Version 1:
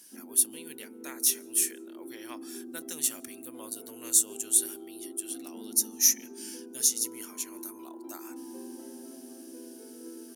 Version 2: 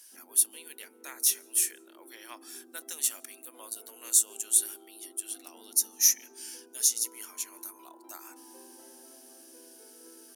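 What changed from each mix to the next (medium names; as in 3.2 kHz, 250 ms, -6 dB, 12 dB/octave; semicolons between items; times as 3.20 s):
master: add high-pass 630 Hz 12 dB/octave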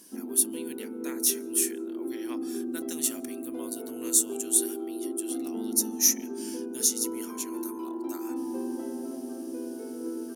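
background +10.0 dB; master: remove high-pass 630 Hz 12 dB/octave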